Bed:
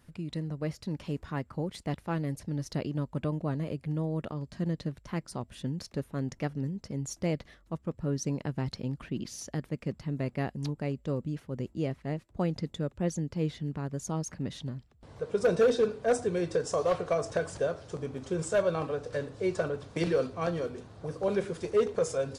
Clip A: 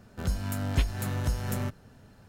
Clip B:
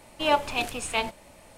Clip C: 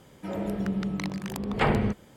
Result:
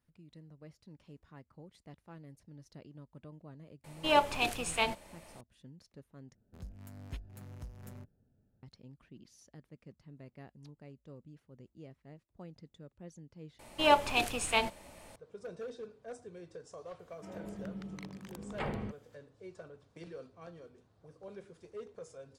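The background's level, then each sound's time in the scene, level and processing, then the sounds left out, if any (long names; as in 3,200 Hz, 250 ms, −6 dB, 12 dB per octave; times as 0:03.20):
bed −19.5 dB
0:03.84: mix in B −3.5 dB
0:06.35: overwrite with A −17.5 dB + adaptive Wiener filter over 41 samples
0:13.59: overwrite with B −2 dB
0:16.99: mix in C −14 dB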